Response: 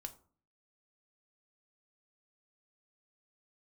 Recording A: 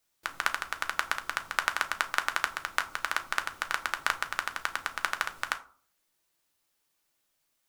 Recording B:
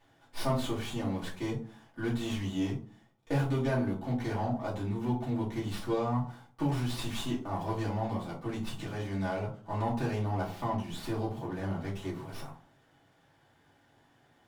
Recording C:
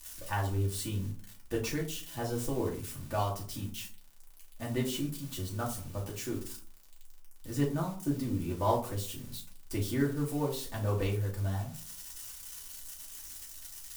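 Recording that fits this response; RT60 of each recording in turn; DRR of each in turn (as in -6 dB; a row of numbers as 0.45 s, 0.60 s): A; 0.45 s, 0.45 s, 0.45 s; 6.5 dB, -7.5 dB, -3.0 dB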